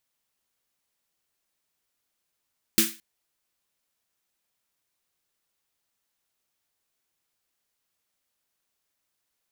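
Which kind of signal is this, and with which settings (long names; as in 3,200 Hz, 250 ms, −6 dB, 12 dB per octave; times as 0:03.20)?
synth snare length 0.22 s, tones 220 Hz, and 330 Hz, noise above 1,500 Hz, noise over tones 5 dB, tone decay 0.26 s, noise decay 0.32 s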